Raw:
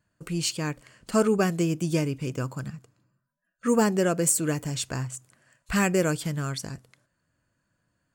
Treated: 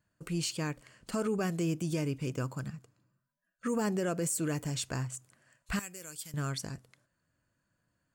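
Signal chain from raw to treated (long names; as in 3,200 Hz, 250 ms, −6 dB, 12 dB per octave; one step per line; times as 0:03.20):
brickwall limiter −19 dBFS, peak gain reduction 9.5 dB
0:05.79–0:06.34: first-order pre-emphasis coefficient 0.9
level −4 dB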